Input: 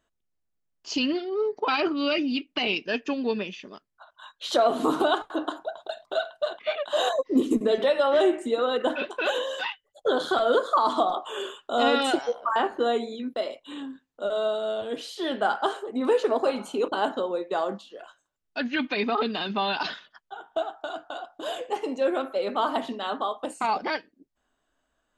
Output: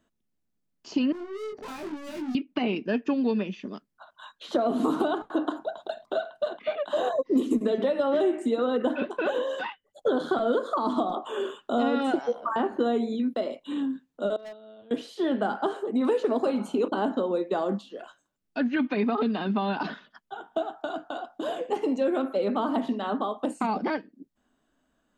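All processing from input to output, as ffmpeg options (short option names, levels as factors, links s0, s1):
-filter_complex "[0:a]asettb=1/sr,asplit=3[s0][s1][s2];[s0]atrim=end=1.124[s3];[s1]atrim=start=1.12:end=2.35,asetpts=PTS-STARTPTS,afade=t=in:d=0.004:c=qsin,afade=t=out:st=1.226:d=0.004:c=qsin,equalizer=f=3500:w=2.9:g=-9.5,aeval=exprs='(tanh(112*val(0)+0.1)-tanh(0.1))/112':c=same,asplit=2[s4][s5];[s5]adelay=23,volume=0.708[s6];[s4][s6]amix=inputs=2:normalize=0,atrim=end_sample=54243[s7];[s2]atrim=start=2.346[s8];[s3][s7]acrossfade=d=0.004:c1=hsin:c2=qsin[s9];[s9][s8]acrossfade=d=0.004:c1=qsin:c2=hsin,asettb=1/sr,asplit=3[s10][s11][s12];[s10]atrim=end=14.364[s13];[s11]atrim=start=14.36:end=14.91,asetpts=PTS-STARTPTS,afade=t=in:d=0.004:c=qsin,afade=t=out:st=0.546:d=0.004:c=qsin,agate=range=0.0794:threshold=0.0631:ratio=16:release=100:detection=peak,lowpass=f=4400:w=0.5412,lowpass=f=4400:w=1.3066,asoftclip=type=hard:threshold=0.0106[s14];[s12]atrim=start=14.906[s15];[s13][s14]acrossfade=d=0.004:c1=hsin:c2=qsin[s16];[s16][s15]acrossfade=d=0.004:c1=qsin:c2=hsin,equalizer=f=220:t=o:w=1.3:g=12,acrossover=split=480|1900[s17][s18][s19];[s17]acompressor=threshold=0.0501:ratio=4[s20];[s18]acompressor=threshold=0.0398:ratio=4[s21];[s19]acompressor=threshold=0.00447:ratio=4[s22];[s20][s21][s22]amix=inputs=3:normalize=0"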